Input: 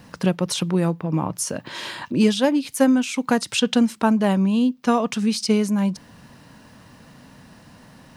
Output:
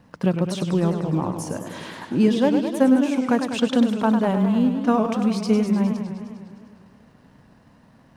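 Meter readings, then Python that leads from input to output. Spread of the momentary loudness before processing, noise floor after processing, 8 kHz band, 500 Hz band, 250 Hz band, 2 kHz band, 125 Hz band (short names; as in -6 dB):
8 LU, -54 dBFS, -9.5 dB, +0.5 dB, +0.5 dB, -3.5 dB, +0.5 dB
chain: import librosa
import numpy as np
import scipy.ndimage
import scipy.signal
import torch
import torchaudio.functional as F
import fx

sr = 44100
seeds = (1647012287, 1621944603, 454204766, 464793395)

y = fx.law_mismatch(x, sr, coded='A')
y = fx.high_shelf(y, sr, hz=2300.0, db=-11.0)
y = fx.echo_warbled(y, sr, ms=102, feedback_pct=72, rate_hz=2.8, cents=169, wet_db=-8.0)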